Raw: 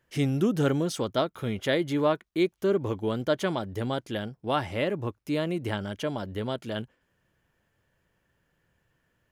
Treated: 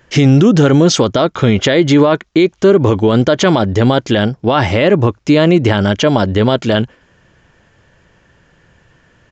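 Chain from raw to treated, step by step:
downsampling to 16,000 Hz
boost into a limiter +22.5 dB
level −1 dB

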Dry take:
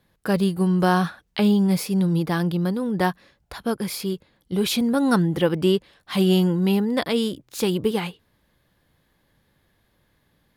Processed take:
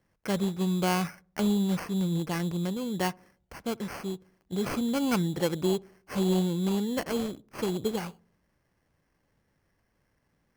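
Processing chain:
sample-rate reduction 3,700 Hz, jitter 0%
feedback echo with a low-pass in the loop 64 ms, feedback 54%, low-pass 930 Hz, level −23.5 dB
level −7.5 dB

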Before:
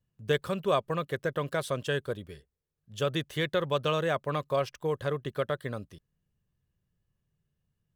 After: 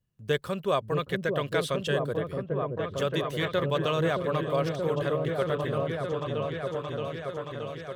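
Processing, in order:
0:00.99–0:01.88: parametric band 3,000 Hz +7.5 dB 1.6 octaves
echo whose low-pass opens from repeat to repeat 624 ms, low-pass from 400 Hz, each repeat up 1 octave, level 0 dB

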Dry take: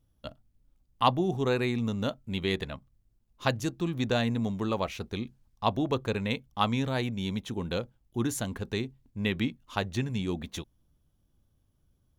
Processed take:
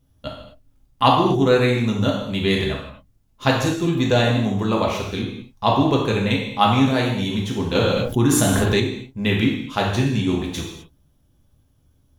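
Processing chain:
reverb whose tail is shaped and stops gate 280 ms falling, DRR −2.5 dB
0:07.75–0:08.80: envelope flattener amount 70%
level +6 dB

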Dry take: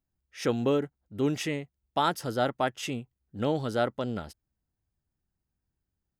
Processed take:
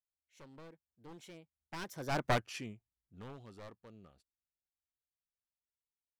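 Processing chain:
wavefolder on the positive side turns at −25.5 dBFS
source passing by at 0:02.28, 42 m/s, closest 3.6 metres
level +1 dB

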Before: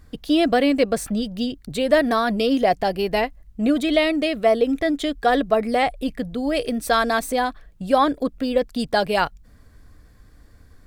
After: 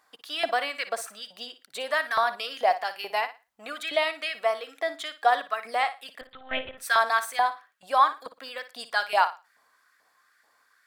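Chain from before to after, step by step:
auto-filter high-pass saw up 2.3 Hz 770–1,700 Hz
0:06.21–0:06.78: one-pitch LPC vocoder at 8 kHz 260 Hz
flutter between parallel walls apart 9.9 metres, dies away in 0.27 s
level −5.5 dB

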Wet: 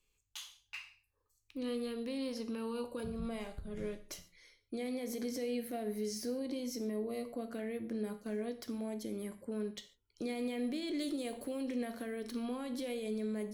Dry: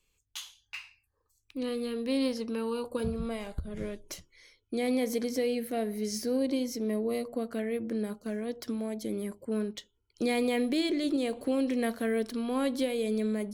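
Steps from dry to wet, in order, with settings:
brickwall limiter −26.5 dBFS, peak gain reduction 9.5 dB
0:10.93–0:11.61: high-shelf EQ 5,400 Hz → 10,000 Hz +10.5 dB
reverb whose tail is shaped and stops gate 170 ms falling, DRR 8.5 dB
level −5 dB

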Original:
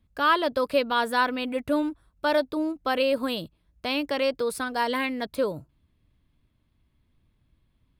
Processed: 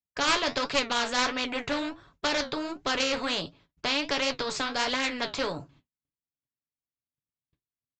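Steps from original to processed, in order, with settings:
noise gate −58 dBFS, range −44 dB
high-pass filter 180 Hz 6 dB per octave
comb filter 7.1 ms, depth 38%
harmonic generator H 2 −9 dB, 8 −25 dB, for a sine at −9 dBFS
flanger 1.4 Hz, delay 7.6 ms, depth 6.9 ms, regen −59%
downsampling to 16,000 Hz
every bin compressed towards the loudest bin 2 to 1

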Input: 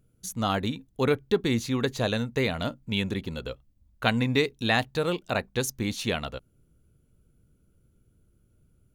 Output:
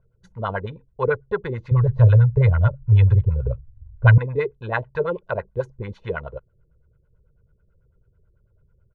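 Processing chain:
parametric band 300 Hz −11.5 dB 0.68 octaves
comb filter 2 ms, depth 69%
0:01.71–0:04.18: low shelf with overshoot 160 Hz +13 dB, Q 3
auto-filter low-pass sine 9.1 Hz 310–1,700 Hz

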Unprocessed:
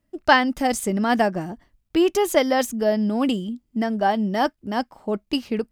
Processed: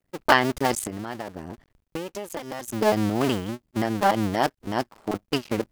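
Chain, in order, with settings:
sub-harmonics by changed cycles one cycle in 2, muted
0:00.84–0:02.68: downward compressor 16 to 1, threshold −30 dBFS, peak gain reduction 16.5 dB
level +1 dB

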